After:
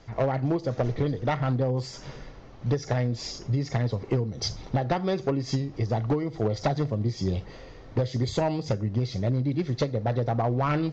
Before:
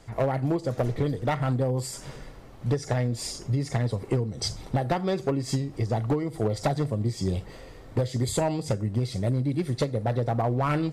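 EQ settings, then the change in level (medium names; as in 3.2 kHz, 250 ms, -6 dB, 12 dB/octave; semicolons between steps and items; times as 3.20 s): steep low-pass 6.6 kHz 72 dB/octave; 0.0 dB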